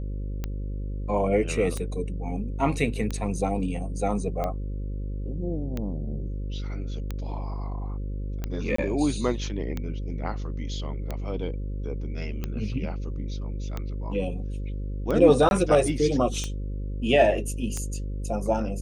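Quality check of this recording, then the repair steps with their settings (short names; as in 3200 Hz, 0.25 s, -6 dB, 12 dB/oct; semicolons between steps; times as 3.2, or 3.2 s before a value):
buzz 50 Hz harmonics 11 -31 dBFS
tick 45 rpm -17 dBFS
8.76–8.78 gap 24 ms
15.49–15.51 gap 21 ms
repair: de-click; de-hum 50 Hz, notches 11; interpolate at 8.76, 24 ms; interpolate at 15.49, 21 ms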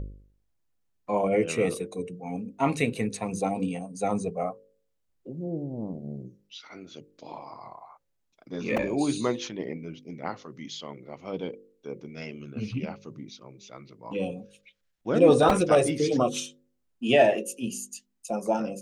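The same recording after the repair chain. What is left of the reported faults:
none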